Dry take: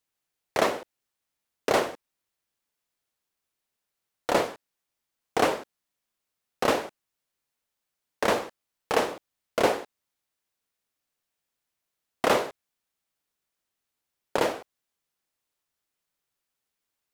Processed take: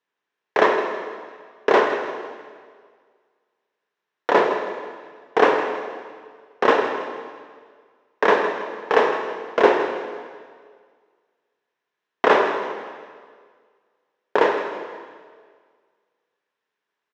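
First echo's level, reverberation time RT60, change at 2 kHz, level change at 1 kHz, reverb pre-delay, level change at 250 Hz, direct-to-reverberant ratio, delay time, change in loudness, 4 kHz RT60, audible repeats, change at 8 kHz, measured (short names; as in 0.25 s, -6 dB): -13.0 dB, 1.8 s, +9.0 dB, +8.5 dB, 7 ms, +5.5 dB, 3.5 dB, 0.161 s, +6.5 dB, 1.7 s, 2, n/a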